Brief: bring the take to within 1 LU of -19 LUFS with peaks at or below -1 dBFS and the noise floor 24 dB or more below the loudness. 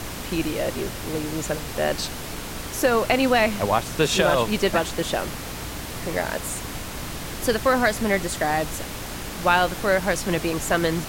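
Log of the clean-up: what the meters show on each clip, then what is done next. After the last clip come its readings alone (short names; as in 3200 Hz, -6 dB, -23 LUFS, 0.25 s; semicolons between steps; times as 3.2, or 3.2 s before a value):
hum 60 Hz; harmonics up to 300 Hz; hum level -40 dBFS; noise floor -33 dBFS; noise floor target -48 dBFS; loudness -24.0 LUFS; peak -5.0 dBFS; loudness target -19.0 LUFS
-> de-hum 60 Hz, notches 5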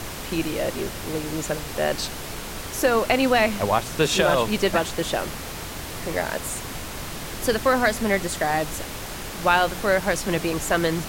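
hum none; noise floor -34 dBFS; noise floor target -48 dBFS
-> noise print and reduce 14 dB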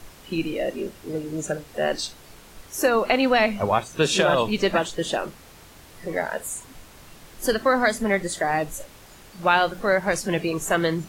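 noise floor -48 dBFS; loudness -23.5 LUFS; peak -6.0 dBFS; loudness target -19.0 LUFS
-> gain +4.5 dB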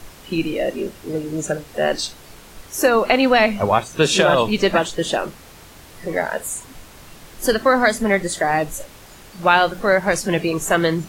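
loudness -19.0 LUFS; peak -1.5 dBFS; noise floor -43 dBFS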